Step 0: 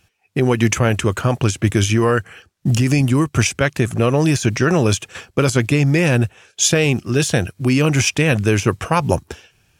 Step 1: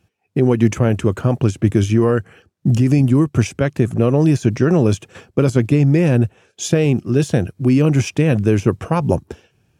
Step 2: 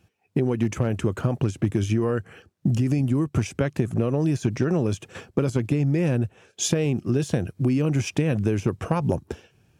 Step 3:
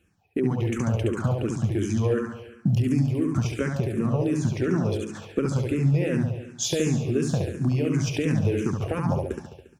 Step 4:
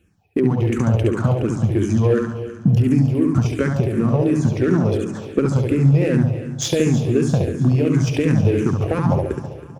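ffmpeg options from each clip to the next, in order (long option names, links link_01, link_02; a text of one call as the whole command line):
ffmpeg -i in.wav -af "highpass=frequency=180:poles=1,tiltshelf=frequency=670:gain=8.5,volume=-1.5dB" out.wav
ffmpeg -i in.wav -af "asoftclip=type=hard:threshold=-3.5dB,acompressor=threshold=-19dB:ratio=6" out.wav
ffmpeg -i in.wav -filter_complex "[0:a]aecho=1:1:70|140|210|280|350|420|490|560|630:0.631|0.379|0.227|0.136|0.0818|0.0491|0.0294|0.0177|0.0106,asplit=2[link_01][link_02];[link_02]afreqshift=-2.8[link_03];[link_01][link_03]amix=inputs=2:normalize=1" out.wav
ffmpeg -i in.wav -filter_complex "[0:a]asplit=2[link_01][link_02];[link_02]adynamicsmooth=sensitivity=5.5:basefreq=650,volume=-2.5dB[link_03];[link_01][link_03]amix=inputs=2:normalize=0,aecho=1:1:322|644|966|1288:0.168|0.0739|0.0325|0.0143,volume=2dB" out.wav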